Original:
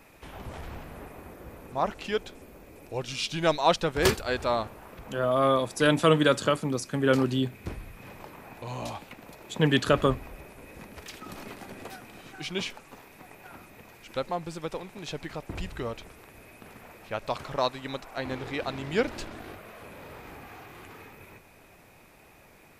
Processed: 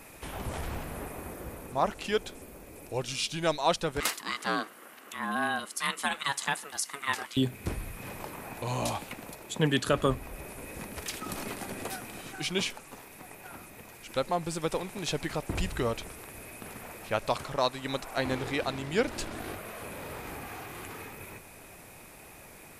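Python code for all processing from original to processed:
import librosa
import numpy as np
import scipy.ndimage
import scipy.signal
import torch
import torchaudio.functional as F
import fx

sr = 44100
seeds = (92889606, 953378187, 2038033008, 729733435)

y = fx.chain(x, sr, fx.ellip_highpass(hz=680.0, order=4, stop_db=40),
    fx.ring_mod(carrier_hz=420.0), at=(4.0, 7.37))
y = fx.peak_eq(y, sr, hz=10000.0, db=9.5, octaves=1.0)
y = fx.rider(y, sr, range_db=4, speed_s=0.5)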